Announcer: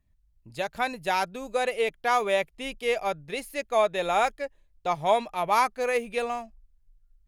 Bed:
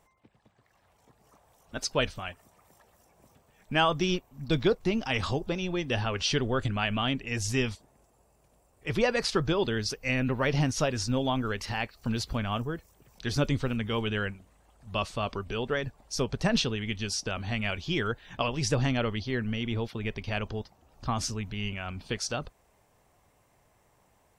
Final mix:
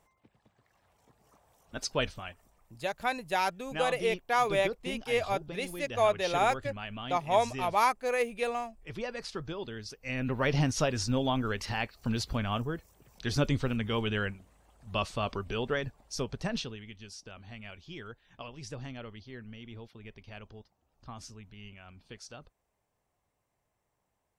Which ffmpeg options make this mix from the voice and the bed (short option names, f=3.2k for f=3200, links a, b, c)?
-filter_complex "[0:a]adelay=2250,volume=-3dB[a];[1:a]volume=7.5dB,afade=t=out:st=2.08:d=0.65:silence=0.375837,afade=t=in:st=9.98:d=0.48:silence=0.298538,afade=t=out:st=15.65:d=1.26:silence=0.199526[b];[a][b]amix=inputs=2:normalize=0"